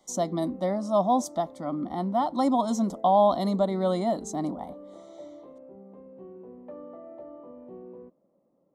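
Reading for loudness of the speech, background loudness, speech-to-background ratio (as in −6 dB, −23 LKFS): −26.0 LKFS, −46.0 LKFS, 20.0 dB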